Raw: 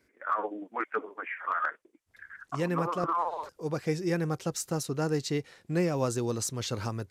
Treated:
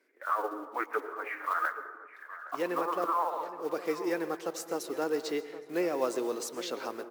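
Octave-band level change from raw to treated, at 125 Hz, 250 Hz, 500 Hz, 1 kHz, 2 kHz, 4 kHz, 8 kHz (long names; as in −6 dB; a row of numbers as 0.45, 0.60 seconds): −23.0, −4.0, 0.0, 0.0, −0.5, −3.0, −6.0 decibels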